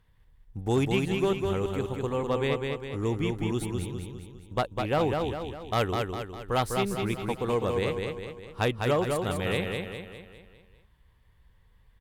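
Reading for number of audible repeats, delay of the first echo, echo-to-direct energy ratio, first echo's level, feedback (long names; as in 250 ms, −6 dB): 6, 202 ms, −3.0 dB, −4.0 dB, 49%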